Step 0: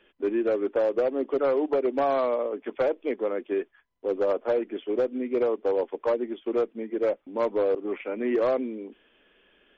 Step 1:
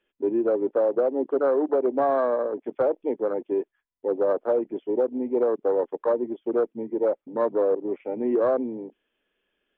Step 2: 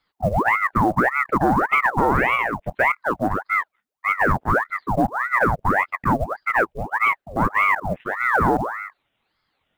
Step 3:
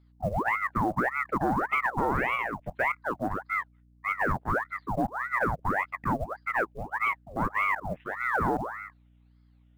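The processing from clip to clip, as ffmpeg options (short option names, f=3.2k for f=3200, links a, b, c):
-af "afwtdn=0.0224,volume=2dB"
-af "acrusher=bits=8:mode=log:mix=0:aa=0.000001,aeval=exprs='val(0)*sin(2*PI*960*n/s+960*0.8/1.7*sin(2*PI*1.7*n/s))':c=same,volume=6.5dB"
-af "aeval=exprs='val(0)+0.00316*(sin(2*PI*60*n/s)+sin(2*PI*2*60*n/s)/2+sin(2*PI*3*60*n/s)/3+sin(2*PI*4*60*n/s)/4+sin(2*PI*5*60*n/s)/5)':c=same,volume=-8.5dB"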